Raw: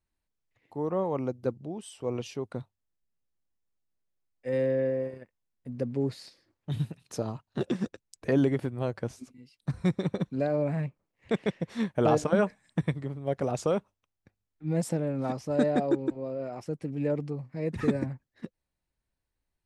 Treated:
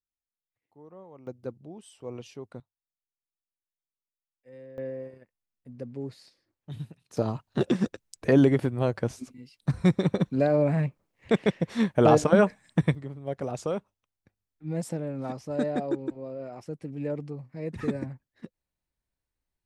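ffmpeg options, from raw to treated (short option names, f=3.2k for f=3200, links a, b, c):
-af "asetnsamples=n=441:p=0,asendcmd='1.27 volume volume -6.5dB;2.6 volume volume -19.5dB;4.78 volume volume -7dB;7.17 volume volume 5dB;12.95 volume volume -3dB',volume=-19dB"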